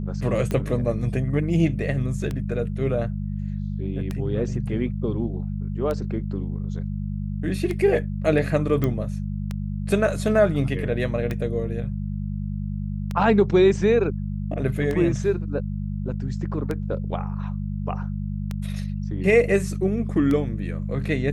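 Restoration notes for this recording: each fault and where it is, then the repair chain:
mains hum 50 Hz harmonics 4 −28 dBFS
scratch tick 33 1/3 rpm −15 dBFS
0:08.84: click −12 dBFS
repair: click removal
hum removal 50 Hz, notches 4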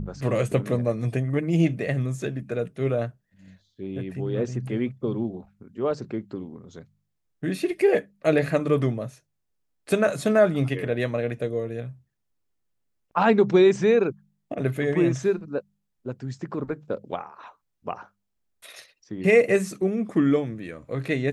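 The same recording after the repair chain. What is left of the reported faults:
none of them is left

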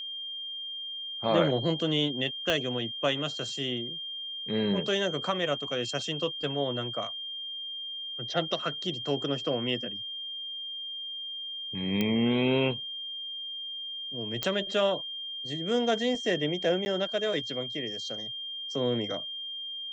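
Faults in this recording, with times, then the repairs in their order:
whistle 3,200 Hz −35 dBFS
0:02.50: click −13 dBFS
0:12.01: click −14 dBFS
0:14.43: click −12 dBFS
0:16.85–0:16.86: drop-out 10 ms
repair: click removal
notch filter 3,200 Hz, Q 30
repair the gap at 0:16.85, 10 ms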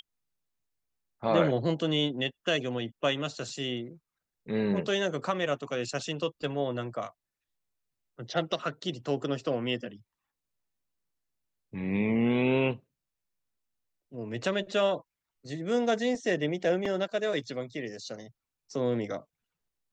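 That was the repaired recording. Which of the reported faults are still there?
0:02.50: click
0:12.01: click

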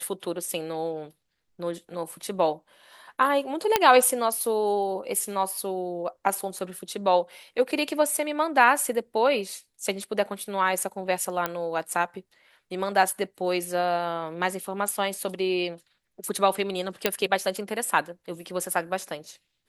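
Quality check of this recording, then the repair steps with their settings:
0:03.76: click −3 dBFS
0:11.46: click −11 dBFS
0:17.06: click −5 dBFS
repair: click removal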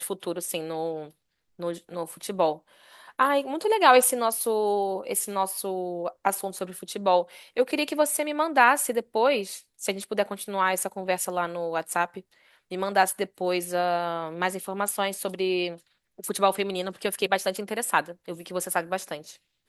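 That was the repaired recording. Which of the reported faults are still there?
none of them is left

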